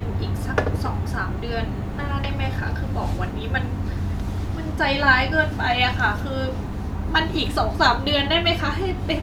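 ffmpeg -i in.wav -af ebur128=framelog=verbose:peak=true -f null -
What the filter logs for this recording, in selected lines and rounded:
Integrated loudness:
  I:         -22.6 LUFS
  Threshold: -32.6 LUFS
Loudness range:
  LRA:         5.3 LU
  Threshold: -42.6 LUFS
  LRA low:   -26.3 LUFS
  LRA high:  -21.0 LUFS
True peak:
  Peak:       -3.4 dBFS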